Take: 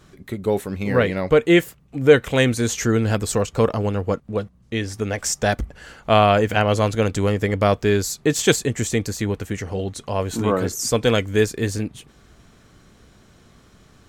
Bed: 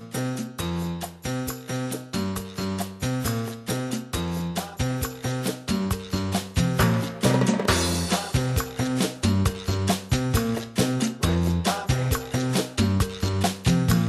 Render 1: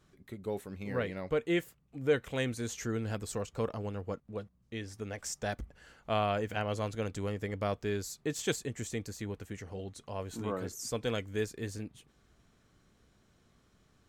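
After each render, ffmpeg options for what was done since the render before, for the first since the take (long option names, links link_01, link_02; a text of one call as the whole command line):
ffmpeg -i in.wav -af "volume=-15.5dB" out.wav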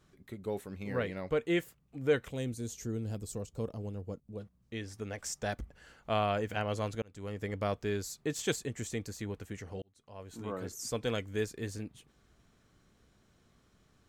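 ffmpeg -i in.wav -filter_complex "[0:a]asplit=3[link_01][link_02][link_03];[link_01]afade=type=out:start_time=2.29:duration=0.02[link_04];[link_02]equalizer=frequency=1600:width=0.52:gain=-14.5,afade=type=in:start_time=2.29:duration=0.02,afade=type=out:start_time=4.4:duration=0.02[link_05];[link_03]afade=type=in:start_time=4.4:duration=0.02[link_06];[link_04][link_05][link_06]amix=inputs=3:normalize=0,asplit=3[link_07][link_08][link_09];[link_07]atrim=end=7.02,asetpts=PTS-STARTPTS,afade=type=out:start_time=7.016:duration=0.004:curve=hsin[link_10];[link_08]atrim=start=7.02:end=9.82,asetpts=PTS-STARTPTS,afade=type=in:duration=0.46,afade=type=out:start_time=2.796:duration=0.004:curve=hsin[link_11];[link_09]atrim=start=9.82,asetpts=PTS-STARTPTS,afade=type=in:duration=1.01[link_12];[link_10][link_11][link_12]concat=n=3:v=0:a=1" out.wav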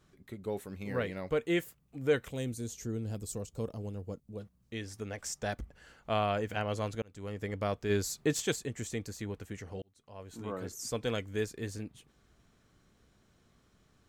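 ffmpeg -i in.wav -filter_complex "[0:a]asettb=1/sr,asplit=3[link_01][link_02][link_03];[link_01]atrim=end=0.614[link_04];[link_02]atrim=start=0.61:end=2.64,asetpts=PTS-STARTPTS,afade=type=in:duration=0.004:curve=qsin,afade=type=out:start_time=2.026:duration=0.004:curve=qsin,highshelf=frequency=8000:gain=6[link_05];[link_03]atrim=start=2.636[link_06];[link_04][link_05]acrossfade=duration=0.004:curve1=hsin:curve2=qsin[link_07];[link_07][link_06]acrossfade=duration=0.004:curve1=qsin:curve2=hsin,asettb=1/sr,asplit=3[link_08][link_09][link_10];[link_08]atrim=end=3.154[link_11];[link_09]atrim=start=3.15:end=5.03,asetpts=PTS-STARTPTS,afade=type=in:duration=0.004:curve=qsin,afade=type=out:start_time=1.876:duration=0.004:curve=qsin,highshelf=frequency=4800:gain=4.5[link_12];[link_10]atrim=start=5.026[link_13];[link_11][link_12]acrossfade=duration=0.004:curve1=hsin:curve2=qsin[link_14];[link_14][link_13]acrossfade=duration=0.004:curve1=qsin:curve2=hsin,asplit=3[link_15][link_16][link_17];[link_15]afade=type=out:start_time=7.89:duration=0.02[link_18];[link_16]acontrast=28,afade=type=in:start_time=7.89:duration=0.02,afade=type=out:start_time=8.39:duration=0.02[link_19];[link_17]afade=type=in:start_time=8.39:duration=0.02[link_20];[link_18][link_19][link_20]amix=inputs=3:normalize=0" out.wav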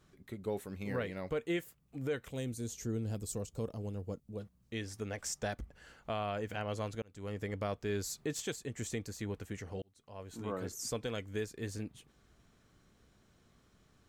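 ffmpeg -i in.wav -af "alimiter=level_in=2dB:limit=-24dB:level=0:latency=1:release=378,volume=-2dB" out.wav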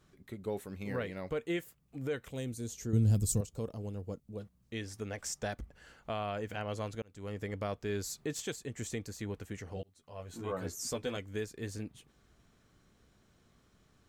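ffmpeg -i in.wav -filter_complex "[0:a]asettb=1/sr,asplit=3[link_01][link_02][link_03];[link_01]atrim=end=2.934[link_04];[link_02]atrim=start=2.93:end=3.41,asetpts=PTS-STARTPTS,afade=type=in:duration=0.004:curve=qsin,afade=type=out:start_time=0.476:duration=0.004:curve=qsin,bass=frequency=250:gain=13,treble=frequency=4000:gain=9[link_05];[link_03]atrim=start=3.406[link_06];[link_04][link_05]acrossfade=duration=0.004:curve1=hsin:curve2=qsin[link_07];[link_07][link_06]acrossfade=duration=0.004:curve1=qsin:curve2=hsin,asettb=1/sr,asplit=3[link_08][link_09][link_10];[link_08]atrim=end=9.754[link_11];[link_09]atrim=start=9.75:end=11.17,asetpts=PTS-STARTPTS,afade=type=in:duration=0.004:curve=qsin,afade=type=out:start_time=1.416:duration=0.004:curve=qsin,asplit=2[link_12][link_13];[link_13]adelay=12,volume=-4dB[link_14];[link_12][link_14]amix=inputs=2:normalize=0,atrim=end_sample=62622[link_15];[link_10]atrim=start=11.166[link_16];[link_11][link_15]acrossfade=duration=0.004:curve1=hsin:curve2=qsin[link_17];[link_17][link_16]acrossfade=duration=0.004:curve1=qsin:curve2=hsin" out.wav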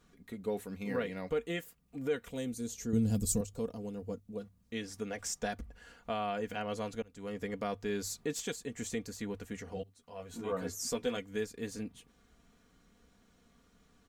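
ffmpeg -i in.wav -af "bandreject=frequency=50:width_type=h:width=6,bandreject=frequency=100:width_type=h:width=6,aecho=1:1:4.2:0.56" out.wav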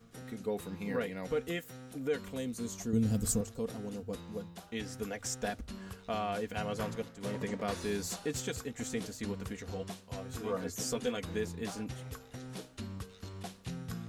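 ffmpeg -i in.wav -i bed.wav -filter_complex "[1:a]volume=-20.5dB[link_01];[0:a][link_01]amix=inputs=2:normalize=0" out.wav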